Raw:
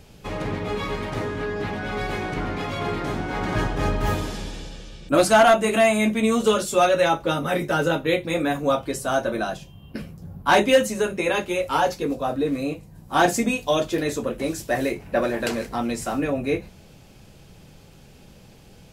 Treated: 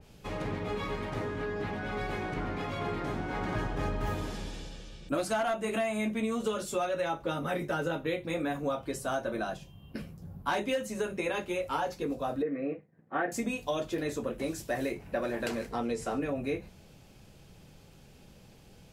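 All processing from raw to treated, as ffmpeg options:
-filter_complex "[0:a]asettb=1/sr,asplit=3[a][b][c];[a]atrim=end=12.424[d];[b]atrim=start=12.42:end=13.32,asetpts=PTS-STARTPTS,afade=t=in:d=0.004:c=qsin,afade=t=out:st=0.896:d=0.004:c=qsin,agate=range=-33dB:threshold=-39dB:ratio=3:release=100:detection=peak,highpass=f=150:w=0.5412,highpass=f=150:w=1.3066,equalizer=f=180:t=q:w=4:g=-5,equalizer=f=470:t=q:w=4:g=5,equalizer=f=950:t=q:w=4:g=-9,equalizer=f=1.9k:t=q:w=4:g=9,lowpass=f=2.1k:w=0.5412,lowpass=f=2.1k:w=1.3066[e];[c]atrim=start=13.316[f];[d][e]acrossfade=d=0.004:c1=hsin:c2=qsin[g];[g][f]acrossfade=d=0.004:c1=qsin:c2=hsin,asettb=1/sr,asplit=3[h][i][j];[h]atrim=end=15.714[k];[i]atrim=start=15.71:end=16.21,asetpts=PTS-STARTPTS,afade=t=in:d=0.004:c=qsin,afade=t=out:st=0.496:d=0.004:c=qsin,lowpass=10k,equalizer=f=450:w=6.2:g=12[l];[j]atrim=start=16.206[m];[k][l]acrossfade=d=0.004:c1=hsin:c2=qsin[n];[n][m]acrossfade=d=0.004:c1=qsin:c2=hsin,acompressor=threshold=-21dB:ratio=6,adynamicequalizer=threshold=0.0112:dfrequency=2700:dqfactor=0.7:tfrequency=2700:tqfactor=0.7:attack=5:release=100:ratio=0.375:range=2:mode=cutabove:tftype=highshelf,volume=-6.5dB"

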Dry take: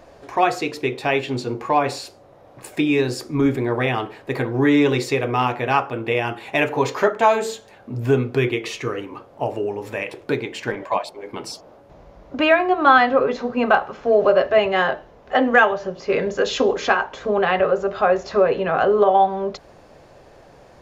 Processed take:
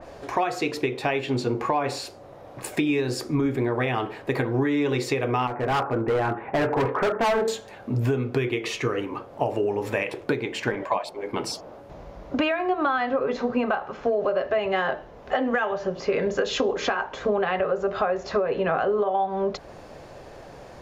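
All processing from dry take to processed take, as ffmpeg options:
-filter_complex "[0:a]asettb=1/sr,asplit=3[a][b][c];[a]atrim=end=5.474[d];[b]atrim=start=5.47:end=7.48,asetpts=PTS-STARTPTS,afade=t=in:d=0.004:c=qsin,afade=t=out:st=2.006:d=0.004:c=qsin,lowpass=f=1.7k:w=0.5412,lowpass=f=1.7k:w=1.3066,asoftclip=type=hard:threshold=-21dB[e];[c]atrim=start=7.476[f];[d][e]acrossfade=d=0.004:c1=hsin:c2=qsin[g];[g][f]acrossfade=d=0.004:c1=qsin:c2=hsin,alimiter=limit=-13dB:level=0:latency=1:release=475,acompressor=threshold=-24dB:ratio=6,adynamicequalizer=threshold=0.00398:dfrequency=2800:dqfactor=0.7:tfrequency=2800:tqfactor=0.7:attack=5:release=100:ratio=0.375:range=1.5:mode=cutabove:tftype=highshelf,volume=4dB"

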